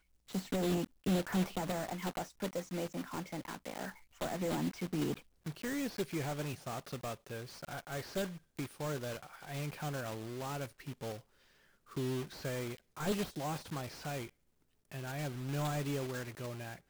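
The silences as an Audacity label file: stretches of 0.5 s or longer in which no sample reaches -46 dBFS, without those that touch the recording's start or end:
11.190000	11.920000	silence
14.290000	14.920000	silence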